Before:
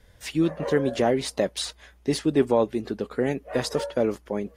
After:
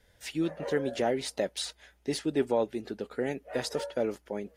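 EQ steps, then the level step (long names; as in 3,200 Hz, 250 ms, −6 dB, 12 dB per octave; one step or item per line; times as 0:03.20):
low-shelf EQ 250 Hz −7 dB
notch filter 1,100 Hz, Q 5.5
−4.5 dB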